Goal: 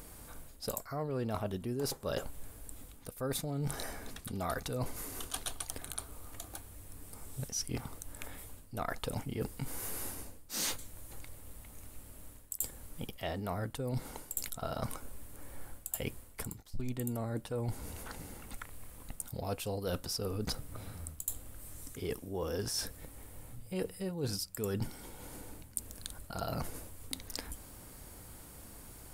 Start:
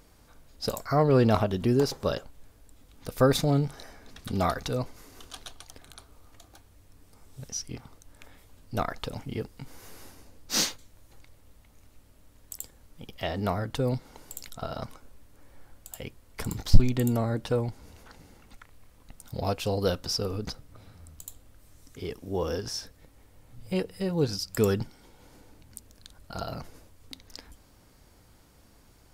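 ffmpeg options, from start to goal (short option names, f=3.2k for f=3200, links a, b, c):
-af "highshelf=f=7.2k:t=q:w=1.5:g=7.5,areverse,acompressor=threshold=-38dB:ratio=16,areverse,volume=5.5dB"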